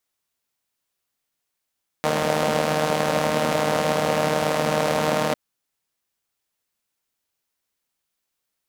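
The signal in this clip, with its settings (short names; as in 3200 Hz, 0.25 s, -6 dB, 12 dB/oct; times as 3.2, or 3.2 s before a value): four-cylinder engine model, steady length 3.30 s, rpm 4600, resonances 230/540 Hz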